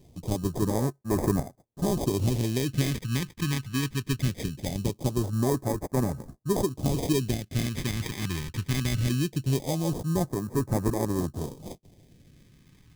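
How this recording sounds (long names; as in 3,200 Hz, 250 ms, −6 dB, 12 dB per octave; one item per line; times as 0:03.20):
aliases and images of a low sample rate 1,400 Hz, jitter 0%
phaser sweep stages 2, 0.21 Hz, lowest notch 600–2,800 Hz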